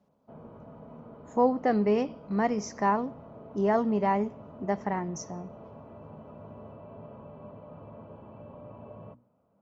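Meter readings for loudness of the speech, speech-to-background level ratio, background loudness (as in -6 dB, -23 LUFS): -28.5 LUFS, 19.0 dB, -47.5 LUFS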